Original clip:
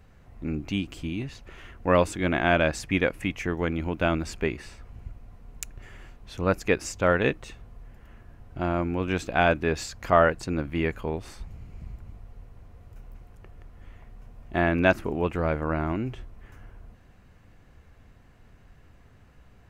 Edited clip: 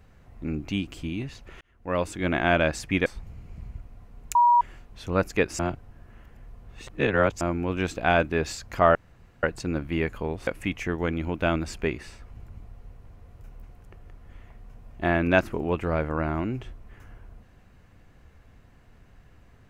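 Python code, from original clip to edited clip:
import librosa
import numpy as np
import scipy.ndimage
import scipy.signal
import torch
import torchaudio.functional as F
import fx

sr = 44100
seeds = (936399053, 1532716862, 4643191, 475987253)

y = fx.edit(x, sr, fx.fade_in_span(start_s=1.61, length_s=0.71),
    fx.swap(start_s=3.06, length_s=1.96, other_s=11.3, other_length_s=0.65),
    fx.bleep(start_s=5.66, length_s=0.26, hz=959.0, db=-14.5),
    fx.reverse_span(start_s=6.9, length_s=1.82),
    fx.insert_room_tone(at_s=10.26, length_s=0.48), tone=tone)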